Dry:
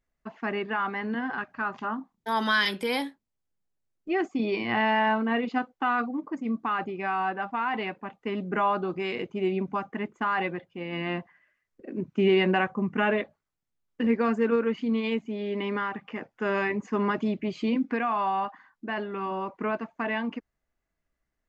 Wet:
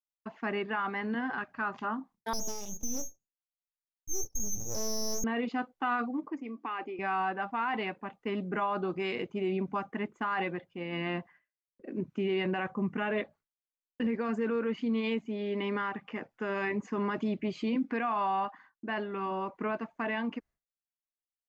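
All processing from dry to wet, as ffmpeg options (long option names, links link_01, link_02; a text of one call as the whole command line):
ffmpeg -i in.wav -filter_complex "[0:a]asettb=1/sr,asplit=3[link_01][link_02][link_03];[link_01]atrim=end=2.334[link_04];[link_02]atrim=start=2.33:end=5.24,asetpts=PTS-STARTPTS,afade=type=in:duration=0.004:curve=qsin,afade=type=out:start_time=2.906:duration=0.004:curve=qsin,asuperstop=centerf=2000:order=8:qfactor=0.61,lowpass=frequency=3000:width_type=q:width=0.5098,lowpass=frequency=3000:width_type=q:width=0.6013,lowpass=frequency=3000:width_type=q:width=0.9,lowpass=frequency=3000:width_type=q:width=2.563,afreqshift=-3500,aeval=exprs='abs(val(0))':channel_layout=same[link_05];[link_03]atrim=start=5.236[link_06];[link_04][link_05]acrossfade=duration=0.004:curve1=hsin:curve2=qsin[link_07];[link_07][link_06]acrossfade=duration=0.004:curve1=qsin:curve2=hsin,asettb=1/sr,asplit=3[link_08][link_09][link_10];[link_08]atrim=end=6.294[link_11];[link_09]atrim=start=6.29:end=6.99,asetpts=PTS-STARTPTS,afade=type=in:duration=0.004:curve=qsin,afade=type=out:start_time=0.696:duration=0.004:curve=qsin,acompressor=threshold=-33dB:ratio=1.5:attack=3.2:release=140:knee=1:detection=peak,highpass=frequency=280:width=0.5412,highpass=frequency=280:width=1.3066,equalizer=frequency=290:width_type=q:width=4:gain=4,equalizer=frequency=630:width_type=q:width=4:gain=-5,equalizer=frequency=1400:width_type=q:width=4:gain=-6,equalizer=frequency=2400:width_type=q:width=4:gain=4,equalizer=frequency=4000:width_type=q:width=4:gain=-7,lowpass=frequency=5900:width=0.5412,lowpass=frequency=5900:width=1.3066[link_12];[link_10]atrim=start=6.986[link_13];[link_11][link_12]acrossfade=duration=0.004:curve1=hsin:curve2=qsin[link_14];[link_14][link_13]acrossfade=duration=0.004:curve1=qsin:curve2=hsin,agate=range=-33dB:threshold=-50dB:ratio=3:detection=peak,alimiter=limit=-21dB:level=0:latency=1:release=12,volume=-2.5dB" out.wav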